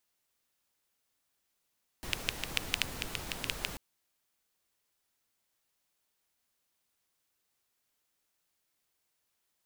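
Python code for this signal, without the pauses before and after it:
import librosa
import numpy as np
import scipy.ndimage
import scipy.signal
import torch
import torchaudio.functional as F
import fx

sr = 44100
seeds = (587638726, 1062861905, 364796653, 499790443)

y = fx.rain(sr, seeds[0], length_s=1.74, drops_per_s=7.1, hz=2700.0, bed_db=-2)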